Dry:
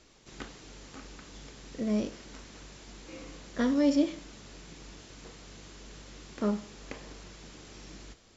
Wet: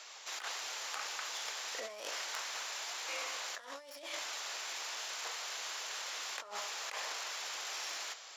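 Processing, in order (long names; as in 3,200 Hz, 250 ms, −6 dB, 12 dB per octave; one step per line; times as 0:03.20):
stylus tracing distortion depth 0.078 ms
high-pass filter 710 Hz 24 dB per octave
compressor whose output falls as the input rises −51 dBFS, ratio −1
level +9 dB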